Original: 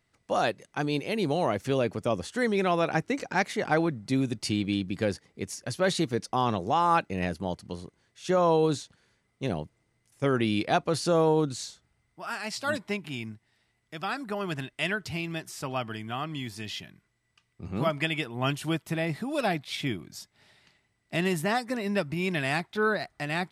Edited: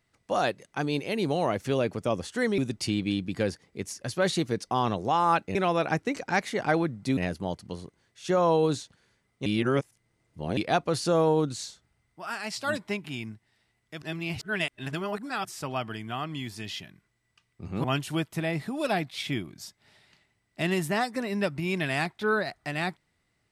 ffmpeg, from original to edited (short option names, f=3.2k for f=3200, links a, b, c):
-filter_complex "[0:a]asplit=9[a][b][c][d][e][f][g][h][i];[a]atrim=end=2.582[j];[b]atrim=start=4.198:end=7.172[k];[c]atrim=start=2.578:end=4.202[l];[d]atrim=start=7.168:end=9.462[m];[e]atrim=start=9.458:end=10.572,asetpts=PTS-STARTPTS,areverse[n];[f]atrim=start=10.568:end=14.022[o];[g]atrim=start=14.018:end=15.452,asetpts=PTS-STARTPTS,areverse[p];[h]atrim=start=15.448:end=17.842[q];[i]atrim=start=18.378[r];[j][k]acrossfade=d=0.004:c1=hsin:c2=hsin[s];[s][l]acrossfade=d=0.004:c1=hsin:c2=hsin[t];[t][m]acrossfade=d=0.004:c1=hsin:c2=hsin[u];[u][n]acrossfade=d=0.004:c1=hsin:c2=hsin[v];[v][o]acrossfade=d=0.004:c1=hsin:c2=hsin[w];[w][p]acrossfade=d=0.004:c1=hsin:c2=hsin[x];[x][q]acrossfade=d=0.004:c1=hsin:c2=hsin[y];[y][r]acrossfade=d=0.004:c1=hsin:c2=hsin"